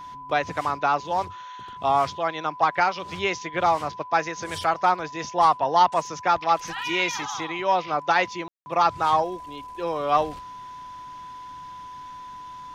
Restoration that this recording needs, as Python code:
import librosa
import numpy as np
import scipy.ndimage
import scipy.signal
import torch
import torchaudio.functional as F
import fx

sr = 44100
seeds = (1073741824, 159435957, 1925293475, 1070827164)

y = fx.notch(x, sr, hz=1000.0, q=30.0)
y = fx.fix_ambience(y, sr, seeds[0], print_start_s=10.72, print_end_s=11.22, start_s=8.48, end_s=8.66)